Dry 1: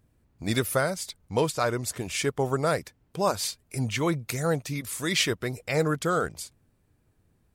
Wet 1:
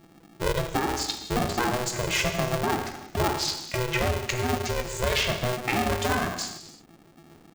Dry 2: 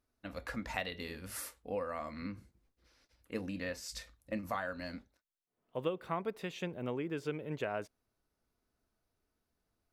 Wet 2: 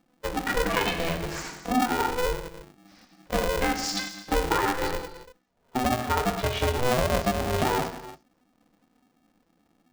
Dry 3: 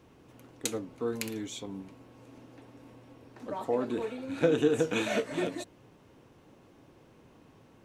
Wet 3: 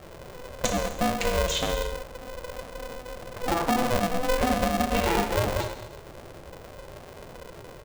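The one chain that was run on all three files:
expanding power law on the bin magnitudes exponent 1.8
downward compressor 10 to 1, threshold −35 dBFS
reverb whose tail is shaped and stops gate 380 ms falling, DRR 3 dB
downsampling to 16,000 Hz
ring modulator with a square carrier 250 Hz
loudness normalisation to −27 LKFS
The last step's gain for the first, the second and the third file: +11.5, +14.0, +13.0 decibels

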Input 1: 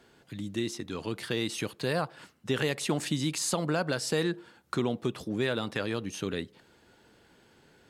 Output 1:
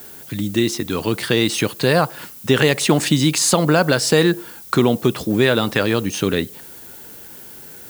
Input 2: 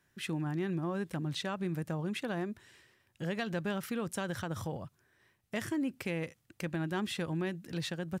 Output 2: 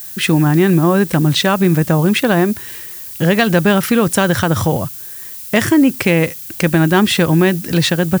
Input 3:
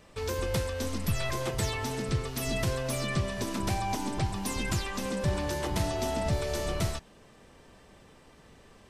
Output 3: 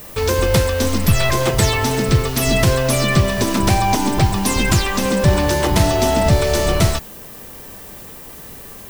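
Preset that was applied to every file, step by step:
background noise violet −53 dBFS
normalise the peak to −1.5 dBFS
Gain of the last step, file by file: +13.5, +22.5, +15.0 decibels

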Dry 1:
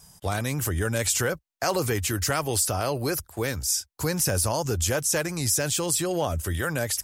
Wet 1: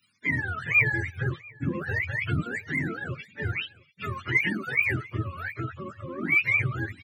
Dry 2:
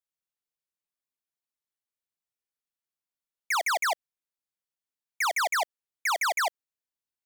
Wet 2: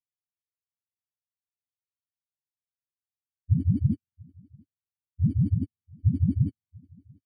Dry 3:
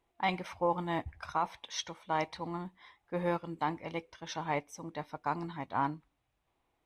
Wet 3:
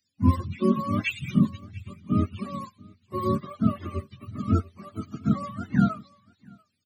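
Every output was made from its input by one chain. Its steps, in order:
frequency axis turned over on the octave scale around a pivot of 440 Hz
drawn EQ curve 230 Hz 0 dB, 710 Hz −10 dB, 2,300 Hz +13 dB
single-tap delay 691 ms −20.5 dB
multiband upward and downward expander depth 40%
loudness normalisation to −27 LKFS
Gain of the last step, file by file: −2.0, 0.0, +9.5 decibels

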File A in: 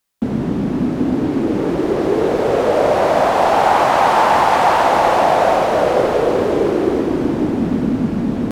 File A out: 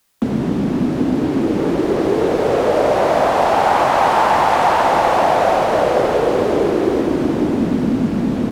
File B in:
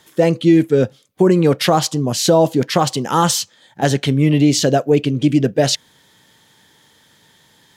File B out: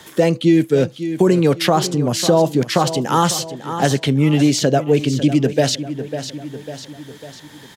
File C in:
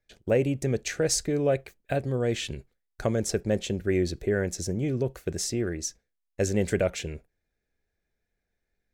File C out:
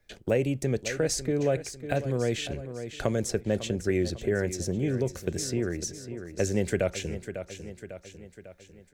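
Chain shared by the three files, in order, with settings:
repeating echo 549 ms, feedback 39%, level −14 dB
multiband upward and downward compressor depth 40%
level −1 dB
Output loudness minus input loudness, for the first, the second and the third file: −0.5, −1.0, −1.5 LU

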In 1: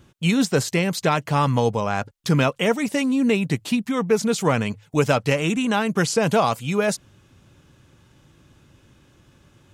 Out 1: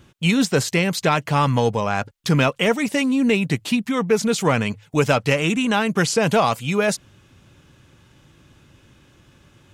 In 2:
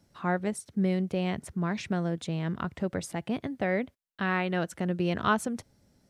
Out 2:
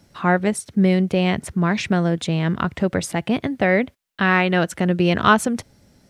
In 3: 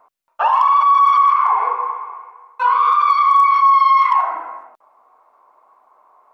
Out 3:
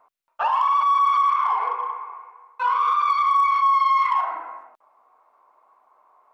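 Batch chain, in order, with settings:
parametric band 2,500 Hz +3 dB 1.6 octaves
in parallel at −10 dB: soft clipping −15.5 dBFS
on the sum: loudness normalisation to −20 LKFS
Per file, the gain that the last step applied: −1.0, +8.0, −8.5 decibels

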